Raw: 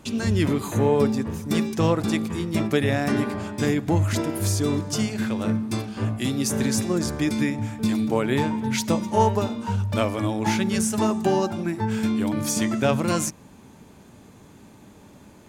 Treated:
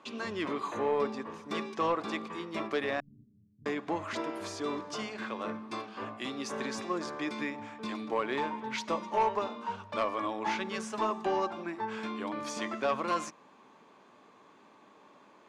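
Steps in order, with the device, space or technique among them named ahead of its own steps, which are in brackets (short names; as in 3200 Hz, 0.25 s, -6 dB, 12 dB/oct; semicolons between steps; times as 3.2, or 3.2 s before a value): intercom (BPF 420–3700 Hz; bell 1100 Hz +11 dB 0.2 oct; soft clip -15 dBFS, distortion -18 dB); 3–3.66 inverse Chebyshev low-pass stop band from 810 Hz, stop band 80 dB; gain -5 dB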